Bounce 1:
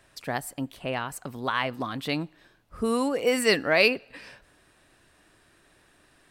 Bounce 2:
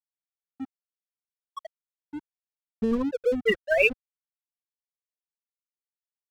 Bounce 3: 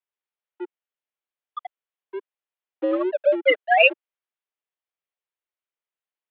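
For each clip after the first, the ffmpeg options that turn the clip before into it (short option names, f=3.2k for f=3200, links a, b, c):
-af "afftfilt=real='re*gte(hypot(re,im),0.398)':imag='im*gte(hypot(re,im),0.398)':win_size=1024:overlap=0.75,aeval=exprs='sgn(val(0))*max(abs(val(0))-0.00631,0)':c=same,asubboost=boost=12:cutoff=110,volume=4.5dB"
-af "highpass=f=260:t=q:w=0.5412,highpass=f=260:t=q:w=1.307,lowpass=f=3.3k:t=q:w=0.5176,lowpass=f=3.3k:t=q:w=0.7071,lowpass=f=3.3k:t=q:w=1.932,afreqshift=91,volume=5.5dB"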